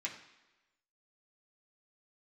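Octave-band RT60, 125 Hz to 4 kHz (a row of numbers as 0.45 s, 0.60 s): 0.85 s, 1.0 s, 1.1 s, 1.1 s, 1.1 s, 1.0 s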